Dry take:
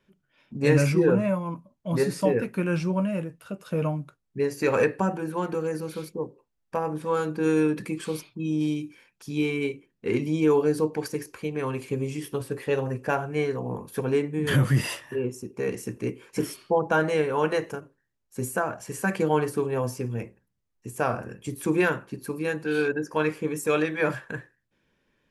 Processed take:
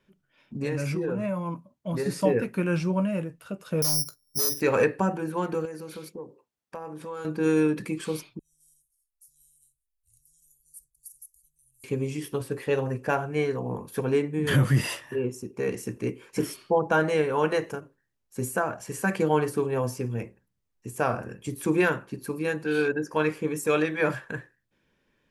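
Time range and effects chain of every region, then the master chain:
0.54–2.06 s: high-pass 60 Hz + compression, threshold -25 dBFS
3.82–4.61 s: hard clipper -32 dBFS + treble shelf 2.4 kHz -7 dB + careless resampling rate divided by 8×, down filtered, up zero stuff
5.65–7.25 s: high-pass 200 Hz 6 dB/octave + compression 3:1, threshold -36 dBFS
8.39–11.84 s: inverse Chebyshev band-stop 190–2500 Hz, stop band 70 dB + peaking EQ 2.3 kHz +11.5 dB 0.57 oct
whole clip: none

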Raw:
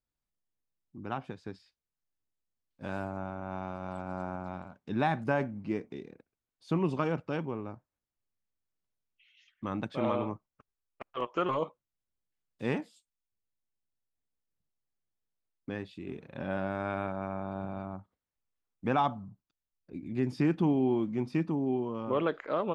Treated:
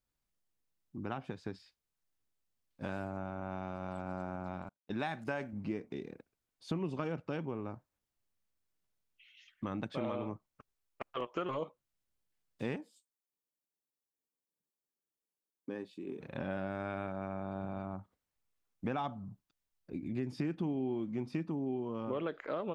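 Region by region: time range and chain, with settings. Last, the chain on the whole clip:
4.69–5.53 s: gate -41 dBFS, range -37 dB + tilt EQ +2 dB/octave + tape noise reduction on one side only decoder only
12.76–16.20 s: high-pass 280 Hz + peaking EQ 2.3 kHz -9.5 dB 2.8 oct + comb of notches 680 Hz
whole clip: dynamic bell 1 kHz, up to -4 dB, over -43 dBFS, Q 2.1; compression 3:1, threshold -39 dBFS; trim +3 dB

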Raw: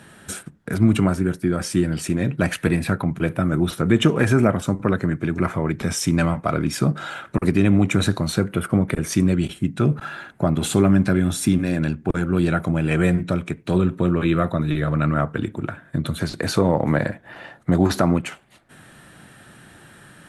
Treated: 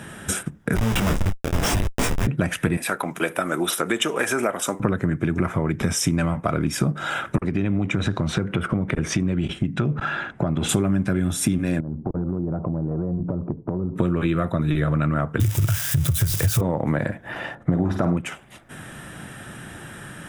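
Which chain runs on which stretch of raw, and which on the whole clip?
0.76–2.27 s: FFT filter 130 Hz 0 dB, 220 Hz -1 dB, 330 Hz -14 dB, 720 Hz +10 dB, 4.3 kHz +15 dB + Schmitt trigger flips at -14 dBFS + detune thickener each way 33 cents
2.77–4.80 s: high-pass 480 Hz + treble shelf 4.8 kHz +9 dB
7.40–10.69 s: low-pass 4.7 kHz + compression 2:1, threshold -26 dBFS
11.80–13.96 s: steep low-pass 1 kHz + compression 12:1, threshold -29 dBFS
15.40–16.61 s: zero-crossing glitches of -13.5 dBFS + resonant low shelf 160 Hz +11.5 dB, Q 3 + compression 2.5:1, threshold -14 dBFS
17.55–18.17 s: low-pass 1.3 kHz 6 dB/octave + flutter echo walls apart 8.9 m, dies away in 0.4 s
whole clip: band-stop 4.3 kHz, Q 5.1; compression 6:1, threshold -27 dBFS; bass shelf 150 Hz +3 dB; trim +7.5 dB

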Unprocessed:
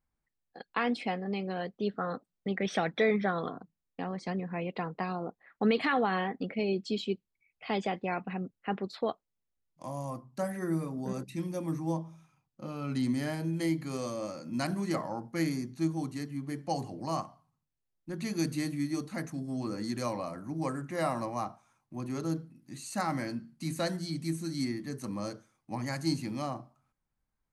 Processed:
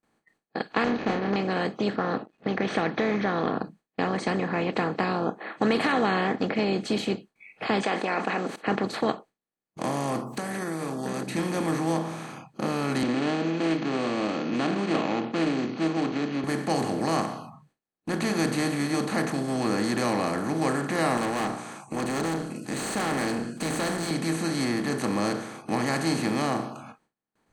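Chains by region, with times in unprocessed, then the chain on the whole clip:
0.84–1.36 s: median filter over 41 samples + distance through air 290 m + doubling 30 ms -7 dB
1.96–3.59 s: compression 1.5:1, threshold -35 dBFS + companded quantiser 8-bit + distance through air 220 m
7.83–8.56 s: band-pass 640–7200 Hz + level flattener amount 50%
10.26–11.27 s: treble shelf 5.1 kHz +10 dB + compression 5:1, threshold -45 dBFS
13.03–16.44 s: median filter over 25 samples + cabinet simulation 250–4800 Hz, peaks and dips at 290 Hz +7 dB, 560 Hz -4 dB, 910 Hz -7 dB, 1.7 kHz -9 dB, 2.7 kHz +8 dB + loudspeaker Doppler distortion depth 0.11 ms
21.17–24.11 s: peaking EQ 7.9 kHz +12.5 dB 0.61 oct + hum notches 60/120/180/240/300/360/420 Hz + valve stage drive 36 dB, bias 0.45
whole clip: spectral levelling over time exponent 0.4; gate with hold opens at -36 dBFS; spectral noise reduction 25 dB

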